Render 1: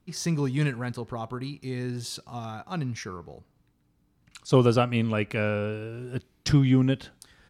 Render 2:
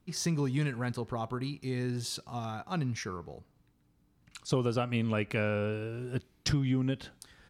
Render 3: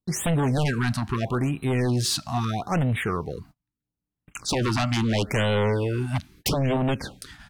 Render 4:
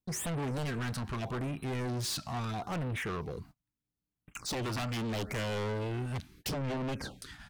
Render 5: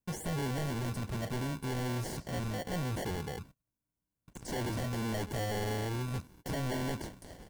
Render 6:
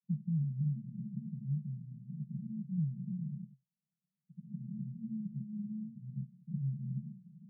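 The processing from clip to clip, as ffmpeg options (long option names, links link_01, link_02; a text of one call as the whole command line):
ffmpeg -i in.wav -af "acompressor=threshold=-25dB:ratio=5,volume=-1dB" out.wav
ffmpeg -i in.wav -af "agate=range=-33dB:threshold=-58dB:ratio=16:detection=peak,aeval=exprs='0.133*sin(PI/2*3.55*val(0)/0.133)':channel_layout=same,afftfilt=real='re*(1-between(b*sr/1024,410*pow(5800/410,0.5+0.5*sin(2*PI*0.77*pts/sr))/1.41,410*pow(5800/410,0.5+0.5*sin(2*PI*0.77*pts/sr))*1.41))':imag='im*(1-between(b*sr/1024,410*pow(5800/410,0.5+0.5*sin(2*PI*0.77*pts/sr))/1.41,410*pow(5800/410,0.5+0.5*sin(2*PI*0.77*pts/sr))*1.41))':win_size=1024:overlap=0.75,volume=-1.5dB" out.wav
ffmpeg -i in.wav -af "asoftclip=type=tanh:threshold=-29dB,volume=-3.5dB" out.wav
ffmpeg -i in.wav -filter_complex "[0:a]acrossover=split=5300[link_01][link_02];[link_01]acrusher=samples=35:mix=1:aa=0.000001[link_03];[link_02]alimiter=level_in=15dB:limit=-24dB:level=0:latency=1,volume=-15dB[link_04];[link_03][link_04]amix=inputs=2:normalize=0" out.wav
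ffmpeg -i in.wav -af "asuperpass=centerf=170:order=20:qfactor=1.9,volume=4.5dB" out.wav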